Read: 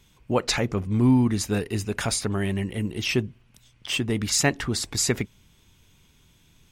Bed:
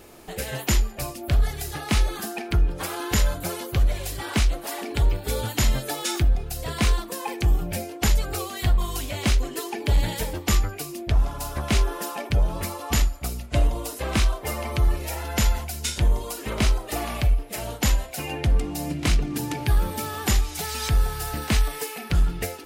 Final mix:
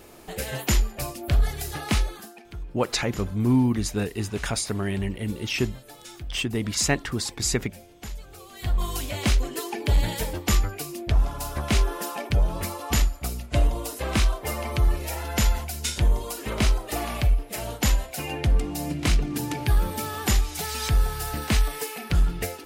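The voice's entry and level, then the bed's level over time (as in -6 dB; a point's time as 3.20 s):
2.45 s, -1.5 dB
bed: 1.92 s -0.5 dB
2.42 s -16.5 dB
8.38 s -16.5 dB
8.83 s -0.5 dB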